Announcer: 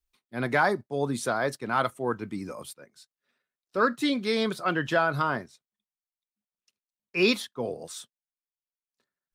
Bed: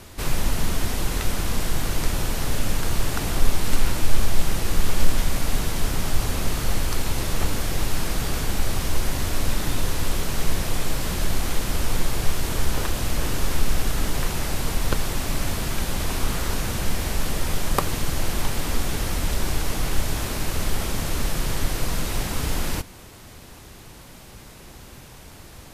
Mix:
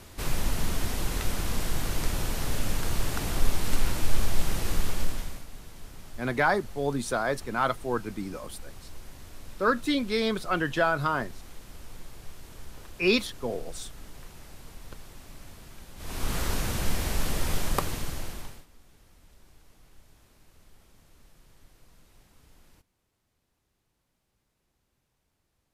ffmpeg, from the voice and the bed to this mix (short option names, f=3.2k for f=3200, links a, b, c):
-filter_complex "[0:a]adelay=5850,volume=-0.5dB[a];[1:a]volume=13dB,afade=t=out:st=4.71:d=0.75:silence=0.149624,afade=t=in:st=15.96:d=0.42:silence=0.125893,afade=t=out:st=17.57:d=1.09:silence=0.0334965[b];[a][b]amix=inputs=2:normalize=0"